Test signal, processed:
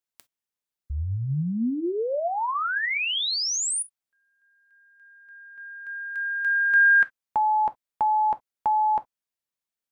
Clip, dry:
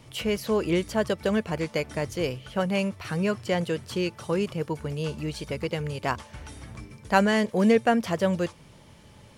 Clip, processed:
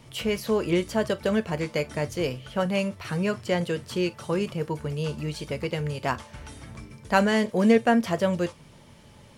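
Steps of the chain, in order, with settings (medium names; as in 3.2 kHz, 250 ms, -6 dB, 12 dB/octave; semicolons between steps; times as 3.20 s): gated-style reverb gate 80 ms falling, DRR 10.5 dB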